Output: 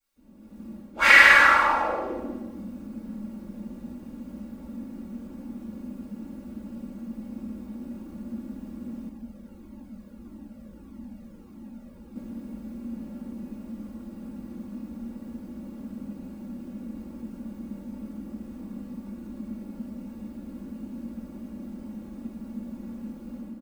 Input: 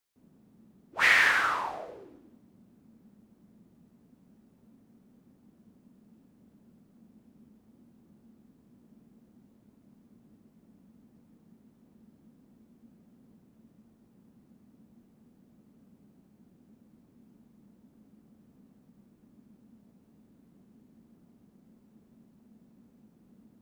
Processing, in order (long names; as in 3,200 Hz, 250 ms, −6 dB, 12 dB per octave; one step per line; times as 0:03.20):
comb filter 3.6 ms, depth 94%
automatic gain control gain up to 13.5 dB
convolution reverb RT60 1.1 s, pre-delay 3 ms, DRR −13 dB
0:09.09–0:12.16: flanger whose copies keep moving one way falling 1.6 Hz
level −14.5 dB